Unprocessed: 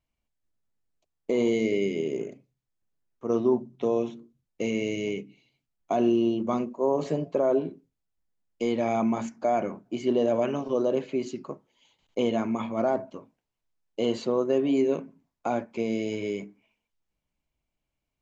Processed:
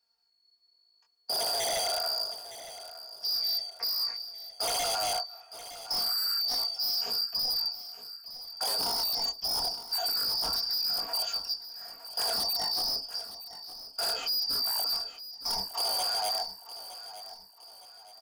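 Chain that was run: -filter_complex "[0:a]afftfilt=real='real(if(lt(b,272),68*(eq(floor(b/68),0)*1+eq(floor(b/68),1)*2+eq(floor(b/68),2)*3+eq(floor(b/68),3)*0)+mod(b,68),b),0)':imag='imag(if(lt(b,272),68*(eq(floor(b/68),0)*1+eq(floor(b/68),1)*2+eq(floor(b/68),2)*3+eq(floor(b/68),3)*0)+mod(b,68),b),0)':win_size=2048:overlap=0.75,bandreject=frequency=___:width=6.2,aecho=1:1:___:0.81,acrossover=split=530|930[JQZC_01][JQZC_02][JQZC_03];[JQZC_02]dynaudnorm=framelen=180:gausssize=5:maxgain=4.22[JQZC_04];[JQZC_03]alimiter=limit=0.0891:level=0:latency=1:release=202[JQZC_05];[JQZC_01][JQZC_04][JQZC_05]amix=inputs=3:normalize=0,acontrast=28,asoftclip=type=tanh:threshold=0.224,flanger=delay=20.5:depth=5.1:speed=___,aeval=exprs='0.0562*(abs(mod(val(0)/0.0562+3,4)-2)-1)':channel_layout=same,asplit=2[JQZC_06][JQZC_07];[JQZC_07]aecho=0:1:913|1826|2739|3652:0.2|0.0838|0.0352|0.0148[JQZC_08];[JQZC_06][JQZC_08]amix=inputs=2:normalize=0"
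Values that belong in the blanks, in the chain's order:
210, 4.3, 0.8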